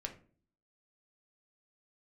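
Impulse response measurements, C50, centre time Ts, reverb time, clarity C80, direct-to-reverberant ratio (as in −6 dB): 12.0 dB, 11 ms, 0.45 s, 17.0 dB, 2.5 dB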